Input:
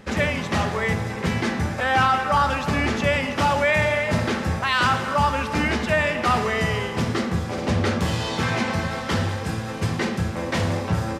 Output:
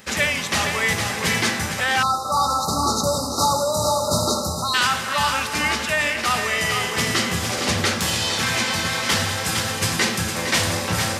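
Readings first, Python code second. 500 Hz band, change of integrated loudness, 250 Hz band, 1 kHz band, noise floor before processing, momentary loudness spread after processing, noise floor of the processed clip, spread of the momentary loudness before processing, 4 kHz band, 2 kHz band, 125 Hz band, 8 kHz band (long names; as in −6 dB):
−1.0 dB, +2.0 dB, −3.0 dB, +0.5 dB, −30 dBFS, 2 LU, −27 dBFS, 6 LU, +8.0 dB, +2.0 dB, −4.0 dB, +14.0 dB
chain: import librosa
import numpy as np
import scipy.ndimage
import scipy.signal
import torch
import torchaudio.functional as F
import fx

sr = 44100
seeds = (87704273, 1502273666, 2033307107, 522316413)

p1 = fx.tilt_eq(x, sr, slope=4.5)
p2 = p1 + fx.echo_single(p1, sr, ms=460, db=-7.0, dry=0)
p3 = fx.spec_erase(p2, sr, start_s=2.03, length_s=2.71, low_hz=1400.0, high_hz=3700.0)
p4 = fx.rider(p3, sr, range_db=3, speed_s=0.5)
y = fx.low_shelf(p4, sr, hz=190.0, db=11.5)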